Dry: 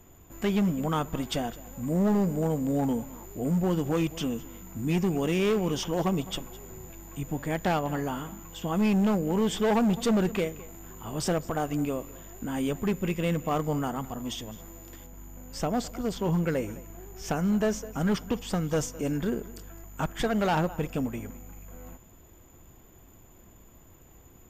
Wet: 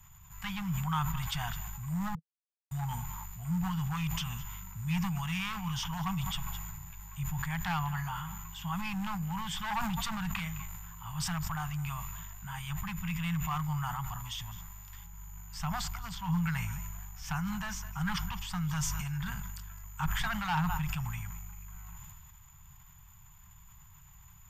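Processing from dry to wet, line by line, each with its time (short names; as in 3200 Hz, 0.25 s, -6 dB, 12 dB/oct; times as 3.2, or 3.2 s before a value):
2.15–2.71 mute
whole clip: elliptic band-stop 160–910 Hz, stop band 40 dB; dynamic EQ 7500 Hz, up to -5 dB, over -53 dBFS, Q 0.75; sustainer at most 23 dB/s; gain -1 dB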